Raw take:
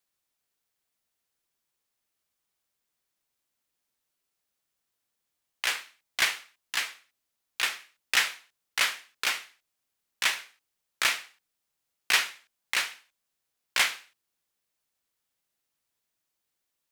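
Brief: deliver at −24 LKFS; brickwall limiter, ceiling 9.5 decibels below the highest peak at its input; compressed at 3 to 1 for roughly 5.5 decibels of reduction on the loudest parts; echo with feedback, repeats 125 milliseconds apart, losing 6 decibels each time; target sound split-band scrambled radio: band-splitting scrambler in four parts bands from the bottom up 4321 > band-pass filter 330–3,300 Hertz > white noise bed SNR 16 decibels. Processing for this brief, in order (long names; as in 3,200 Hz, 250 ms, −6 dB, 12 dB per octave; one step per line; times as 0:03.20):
downward compressor 3 to 1, threshold −26 dBFS
brickwall limiter −20 dBFS
repeating echo 125 ms, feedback 50%, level −6 dB
band-splitting scrambler in four parts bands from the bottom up 4321
band-pass filter 330–3,300 Hz
white noise bed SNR 16 dB
level +15 dB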